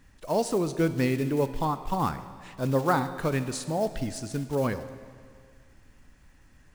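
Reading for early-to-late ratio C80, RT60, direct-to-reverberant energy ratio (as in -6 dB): 13.0 dB, 2.0 s, 11.0 dB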